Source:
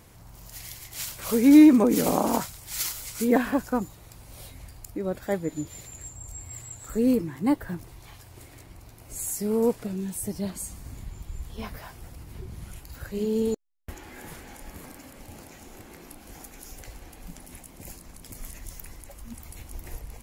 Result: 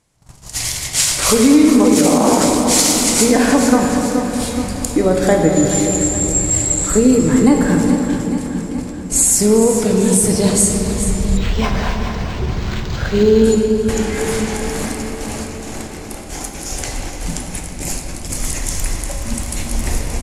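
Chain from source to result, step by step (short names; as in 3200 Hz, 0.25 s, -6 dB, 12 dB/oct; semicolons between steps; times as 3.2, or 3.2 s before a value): LPF 9000 Hz 24 dB/oct; notches 50/100/150/200 Hz; gate -45 dBFS, range -30 dB; high shelf 6300 Hz +12 dB; compressor, threshold -27 dBFS, peak gain reduction 16 dB; feedback echo 0.425 s, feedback 56%, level -11 dB; shoebox room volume 220 m³, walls hard, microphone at 0.4 m; maximiser +18.5 dB; 11.37–13.44 decimation joined by straight lines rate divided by 4×; gain -1 dB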